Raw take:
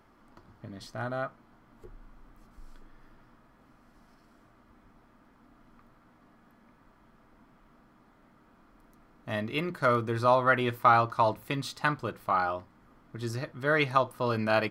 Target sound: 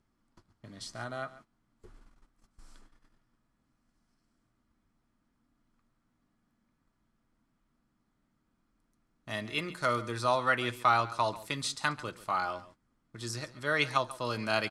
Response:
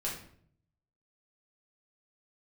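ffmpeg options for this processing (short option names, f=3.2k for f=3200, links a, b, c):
-filter_complex "[0:a]acrossover=split=280[a][b];[a]acompressor=mode=upward:threshold=-43dB:ratio=2.5[c];[b]crystalizer=i=5:c=0[d];[c][d]amix=inputs=2:normalize=0,lowpass=f=9.4k:w=0.5412,lowpass=f=9.4k:w=1.3066,aecho=1:1:138:0.141,agate=range=-16dB:threshold=-47dB:ratio=16:detection=peak,volume=-6.5dB"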